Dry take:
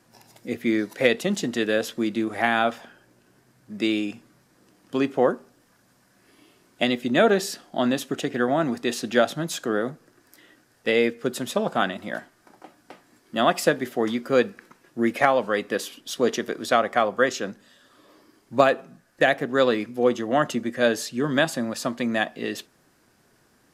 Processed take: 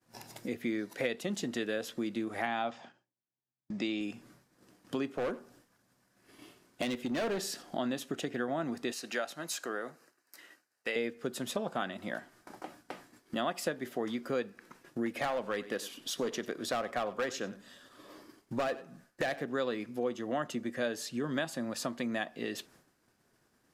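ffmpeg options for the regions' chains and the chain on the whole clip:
-filter_complex "[0:a]asettb=1/sr,asplit=3[a][b][c];[a]atrim=end=2.464[d];[b]atrim=start=2.46:end=4.01,asetpts=PTS-STARTPTS,afade=t=in:d=0.004:c=qsin,afade=t=out:st=1.546:d=0.004:c=qsin,agate=range=-12dB:threshold=-49dB:ratio=16:release=100:detection=peak,highpass=130,equalizer=f=130:t=q:w=4:g=7,equalizer=f=440:t=q:w=4:g=-5,equalizer=f=810:t=q:w=4:g=4,equalizer=f=1.5k:t=q:w=4:g=-5,lowpass=f=7k:w=0.5412,lowpass=f=7k:w=1.3066[e];[c]atrim=start=4.006[f];[d][e]acrossfade=d=0.004:c1=hsin:c2=qsin[g];[g][f]acrossfade=d=0.004:c1=qsin:c2=hsin,asettb=1/sr,asplit=3[h][i][j];[h]atrim=end=5.064[k];[i]atrim=start=5.06:end=7.63,asetpts=PTS-STARTPTS,afade=t=in:d=0.004:c=qsin,afade=t=out:st=2.566:d=0.004:c=qsin,asoftclip=type=hard:threshold=-20dB,aecho=1:1:83:0.0891,atrim=end_sample=113337[l];[j]atrim=start=7.626[m];[k][l]acrossfade=d=0.004:c1=hsin:c2=qsin[n];[n][m]acrossfade=d=0.004:c1=qsin:c2=hsin,asettb=1/sr,asplit=3[o][p][q];[o]atrim=end=8.924[r];[p]atrim=start=8.92:end=10.96,asetpts=PTS-STARTPTS,afade=t=in:d=0.004:c=qsin,afade=t=out:st=2.036:d=0.004:c=qsin,highpass=f=920:p=1,bandreject=f=3.4k:w=6.6[s];[q]atrim=start=10.956[t];[r][s]acrossfade=d=0.004:c1=hsin:c2=qsin[u];[u][t]acrossfade=d=0.004:c1=qsin:c2=hsin,asettb=1/sr,asplit=3[v][w][x];[v]atrim=end=15.064[y];[w]atrim=start=15.06:end=19.49,asetpts=PTS-STARTPTS,afade=t=in:d=0.004:c=qsin,afade=t=out:st=4.426:d=0.004:c=qsin,asoftclip=type=hard:threshold=-16dB,aecho=1:1:95:0.119,atrim=end_sample=195363[z];[x]atrim=start=19.486[aa];[y][z]acrossfade=d=0.004:c1=hsin:c2=qsin[ab];[ab][aa]acrossfade=d=0.004:c1=qsin:c2=hsin,agate=range=-33dB:threshold=-51dB:ratio=3:detection=peak,acompressor=threshold=-43dB:ratio=2.5,volume=4dB"

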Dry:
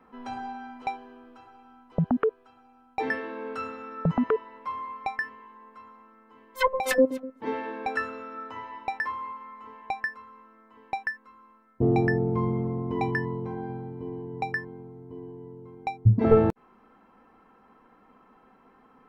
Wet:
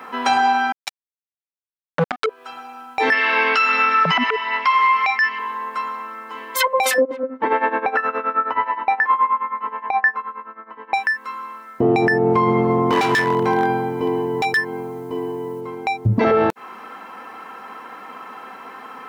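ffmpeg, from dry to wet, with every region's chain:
-filter_complex "[0:a]asettb=1/sr,asplit=3[a][b][c];[a]atrim=end=0.724[d];[b]atrim=start=0.72:end=2.26,asetpts=PTS-STARTPTS,afade=t=in:d=0.004:c=qsin,afade=t=out:st=1.536:d=0.004:c=qsin,aecho=1:1:6.8:0.76,atrim=end_sample=67914,acrusher=bits=2:mix=0:aa=0.5[e];[c]atrim=start=2.256[f];[d][e]acrossfade=d=0.004:c1=hsin:c2=qsin[g];[g][f]acrossfade=d=0.004:c1=qsin:c2=hsin,asettb=1/sr,asplit=3[h][i][j];[h]atrim=end=3.124[k];[i]atrim=start=3.12:end=5.39,asetpts=PTS-STARTPTS,afade=t=in:d=0.004:c=qsin,afade=t=out:st=2.266:d=0.004:c=qsin,aphaser=in_gain=1:out_gain=1:delay=2.8:decay=0.28:speed=1.4:type=sinusoidal,highpass=200,equalizer=f=310:t=q:w=4:g=-8,equalizer=f=500:t=q:w=4:g=-10,equalizer=f=2.1k:t=q:w=4:g=8,equalizer=f=2.9k:t=q:w=4:g=8,equalizer=f=5k:t=q:w=4:g=9,lowpass=f=6.5k:w=0.5412,lowpass=f=6.5k:w=1.3066[l];[j]atrim=start=5.386[m];[k][l]acrossfade=d=0.004:c1=hsin:c2=qsin[n];[n][m]acrossfade=d=0.004:c1=qsin:c2=hsin,asettb=1/sr,asplit=3[o][p][q];[o]atrim=end=7.024[r];[p]atrim=start=7.02:end=10.94,asetpts=PTS-STARTPTS,afade=t=in:d=0.004:c=qsin,afade=t=out:st=3.916:d=0.004:c=qsin,bandreject=f=259.1:t=h:w=4,bandreject=f=518.2:t=h:w=4,bandreject=f=777.3:t=h:w=4,bandreject=f=1.0364k:t=h:w=4,bandreject=f=1.2955k:t=h:w=4,bandreject=f=1.5546k:t=h:w=4,tremolo=f=9.5:d=0.84,lowpass=1.6k[s];[q]atrim=start=10.936[t];[r][s]acrossfade=d=0.004:c1=hsin:c2=qsin[u];[u][t]acrossfade=d=0.004:c1=qsin:c2=hsin,asettb=1/sr,asplit=3[v][w][x];[v]atrim=end=12.904[y];[w]atrim=start=12.9:end=15.61,asetpts=PTS-STARTPTS,afade=t=in:d=0.004:c=qsin,afade=t=out:st=2.706:d=0.004:c=qsin,highshelf=f=8k:g=8.5,volume=25.5dB,asoftclip=hard,volume=-25.5dB[z];[x]atrim=start=15.606[aa];[y][z]acrossfade=d=0.004:c1=hsin:c2=qsin[ab];[ab][aa]acrossfade=d=0.004:c1=qsin:c2=hsin,highpass=f=1.5k:p=1,acompressor=threshold=-38dB:ratio=5,alimiter=level_in=35dB:limit=-1dB:release=50:level=0:latency=1,volume=-7dB"

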